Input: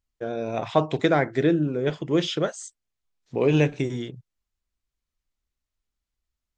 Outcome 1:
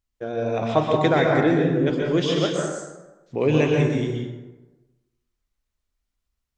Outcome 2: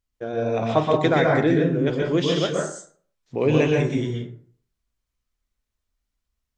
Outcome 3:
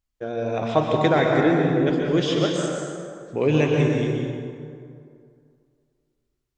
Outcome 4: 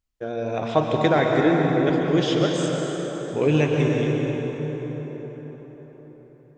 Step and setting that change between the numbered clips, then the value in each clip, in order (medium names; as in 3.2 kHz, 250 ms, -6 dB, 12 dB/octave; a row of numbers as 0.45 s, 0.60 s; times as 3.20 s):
plate-style reverb, RT60: 1.1 s, 0.5 s, 2.3 s, 5.2 s